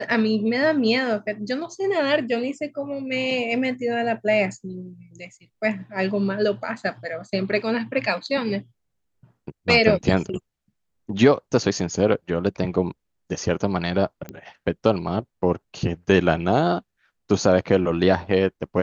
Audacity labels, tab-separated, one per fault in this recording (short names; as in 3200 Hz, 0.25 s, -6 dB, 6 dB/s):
14.290000	14.290000	pop -20 dBFS